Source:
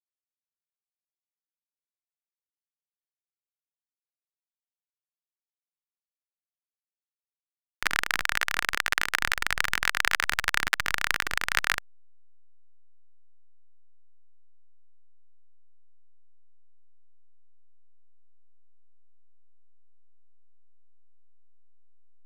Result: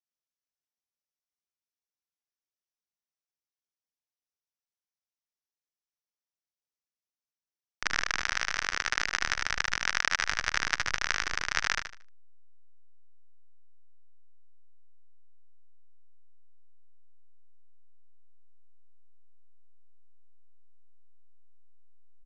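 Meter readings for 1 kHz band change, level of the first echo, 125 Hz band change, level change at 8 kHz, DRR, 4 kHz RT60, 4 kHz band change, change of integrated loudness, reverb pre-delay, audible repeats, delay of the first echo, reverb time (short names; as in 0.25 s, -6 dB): -3.0 dB, -6.0 dB, -2.5 dB, -0.5 dB, none, none, -2.0 dB, -3.0 dB, none, 3, 76 ms, none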